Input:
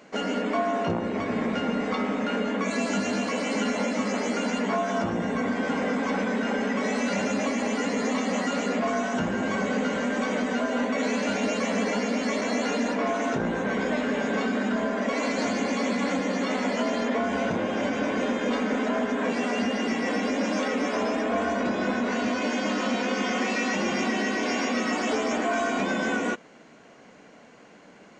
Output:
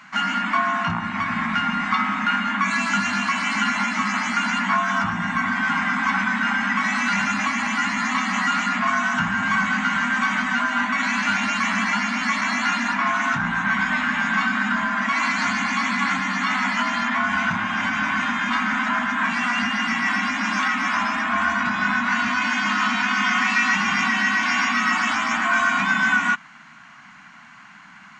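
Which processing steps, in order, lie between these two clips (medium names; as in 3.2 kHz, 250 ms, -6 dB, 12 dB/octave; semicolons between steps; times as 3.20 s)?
Chebyshev band-stop 180–1200 Hz, order 2; peaking EQ 1.1 kHz +11 dB 2.9 oct; trim +2.5 dB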